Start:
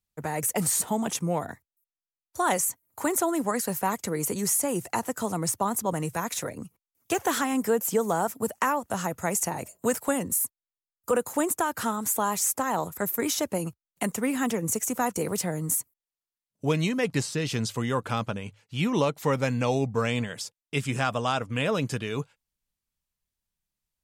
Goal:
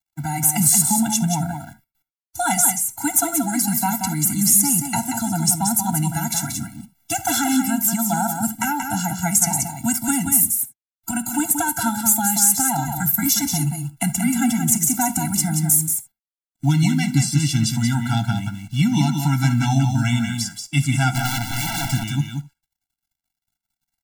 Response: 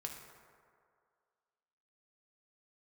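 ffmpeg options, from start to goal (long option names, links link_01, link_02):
-filter_complex "[0:a]bass=frequency=250:gain=4,treble=frequency=4000:gain=8,asplit=3[link_01][link_02][link_03];[link_01]afade=type=out:start_time=12.74:duration=0.02[link_04];[link_02]afreqshift=-21,afade=type=in:start_time=12.74:duration=0.02,afade=type=out:start_time=14.4:duration=0.02[link_05];[link_03]afade=type=in:start_time=14.4:duration=0.02[link_06];[link_04][link_05][link_06]amix=inputs=3:normalize=0,equalizer=frequency=530:width_type=o:width=0.29:gain=-12.5,asettb=1/sr,asplit=3[link_07][link_08][link_09];[link_07]atrim=end=21.104[link_10];[link_08]atrim=start=21.1:end=21.93,asetpts=PTS-STARTPTS,afade=type=in:duration=0.004:curve=qsin,afade=type=out:start_time=0.826:duration=0.004:curve=qsin,aeval=exprs='(mod(14.1*val(0)+1,2)-1)/14.1':channel_layout=same[link_11];[link_09]atrim=start=21.926[link_12];[link_10][link_11]acrossfade=duration=0.004:curve1=hsin:curve2=qsin[link_13];[link_13][link_12]acrossfade=duration=0.004:curve1=qsin:curve2=hsin,aecho=1:1:181:0.501,acrusher=bits=9:dc=4:mix=0:aa=0.000001,asplit=2[link_14][link_15];[1:a]atrim=start_sample=2205,afade=type=out:start_time=0.13:duration=0.01,atrim=end_sample=6174[link_16];[link_15][link_16]afir=irnorm=-1:irlink=0,volume=1dB[link_17];[link_14][link_17]amix=inputs=2:normalize=0,afftfilt=real='re*eq(mod(floor(b*sr/1024/330),2),0)':imag='im*eq(mod(floor(b*sr/1024/330),2),0)':win_size=1024:overlap=0.75,volume=1.5dB"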